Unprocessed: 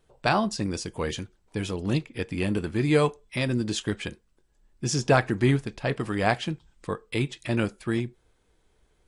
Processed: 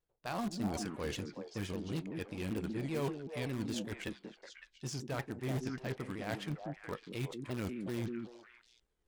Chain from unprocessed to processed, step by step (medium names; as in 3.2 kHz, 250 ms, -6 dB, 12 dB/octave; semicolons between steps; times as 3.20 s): power-law waveshaper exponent 1.4; reverse; compression 8:1, threshold -39 dBFS, peak gain reduction 21.5 dB; reverse; harmonic-percussive split percussive -4 dB; in parallel at -11 dB: integer overflow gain 36 dB; on the sum: repeats whose band climbs or falls 185 ms, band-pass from 250 Hz, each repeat 1.4 oct, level -0.5 dB; vibrato with a chosen wave saw down 5.2 Hz, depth 160 cents; trim +4.5 dB